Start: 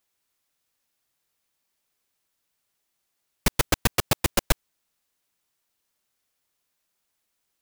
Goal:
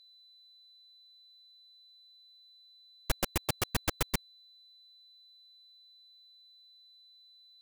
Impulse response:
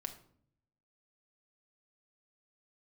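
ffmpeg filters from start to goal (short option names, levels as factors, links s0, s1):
-af "areverse,aeval=exprs='val(0)+0.00398*sin(2*PI*4000*n/s)':c=same,volume=0.355"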